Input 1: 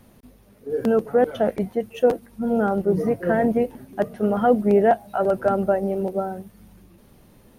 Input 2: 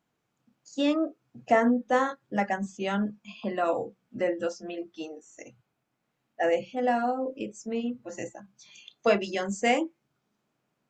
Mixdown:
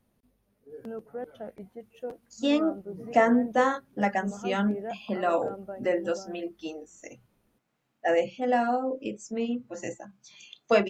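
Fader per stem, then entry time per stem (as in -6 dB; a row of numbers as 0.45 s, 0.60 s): -19.0 dB, +1.0 dB; 0.00 s, 1.65 s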